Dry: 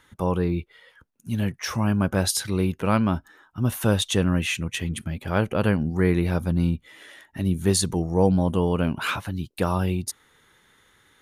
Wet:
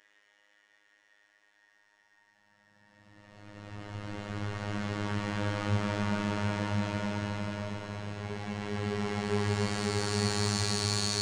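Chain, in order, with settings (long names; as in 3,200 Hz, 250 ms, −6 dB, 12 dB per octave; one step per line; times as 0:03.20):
each half-wave held at its own peak
low-pass filter 8,800 Hz 24 dB per octave
output level in coarse steps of 21 dB
mid-hump overdrive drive 5 dB, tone 3,100 Hz, clips at −11 dBFS
extreme stretch with random phases 17×, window 0.25 s, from 0:07.12
phases set to zero 103 Hz
delay that swaps between a low-pass and a high-pass 112 ms, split 2,500 Hz, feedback 89%, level −13 dB
level −3 dB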